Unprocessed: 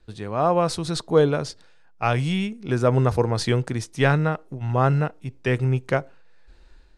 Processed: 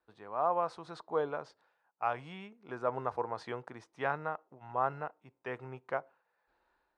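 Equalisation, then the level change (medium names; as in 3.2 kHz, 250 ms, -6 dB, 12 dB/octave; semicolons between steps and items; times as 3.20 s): band-pass filter 950 Hz, Q 1.7; -6.0 dB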